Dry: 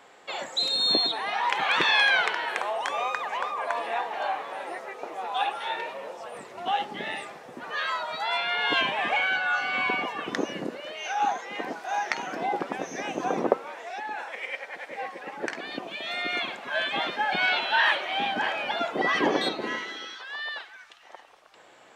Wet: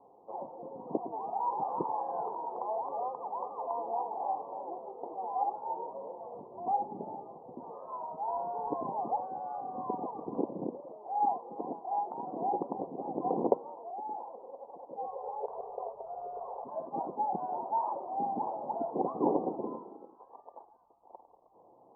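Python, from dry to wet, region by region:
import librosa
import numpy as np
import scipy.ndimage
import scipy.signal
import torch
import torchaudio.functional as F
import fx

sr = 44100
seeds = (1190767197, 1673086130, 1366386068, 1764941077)

y = fx.chain(x, sr, fx.clip_hard(threshold_db=-18.5),
    fx.env_flatten(amount_pct=100), at=(8.28, 8.69))
y = fx.chain(y, sr, fx.brickwall_highpass(low_hz=390.0),
    fx.quant_float(bits=2),
    fx.env_flatten(amount_pct=50), at=(15.07, 16.64))
y = scipy.signal.sosfilt(scipy.signal.butter(12, 990.0, 'lowpass', fs=sr, output='sos'), y)
y = fx.notch(y, sr, hz=610.0, q=12.0)
y = y * librosa.db_to_amplitude(-3.0)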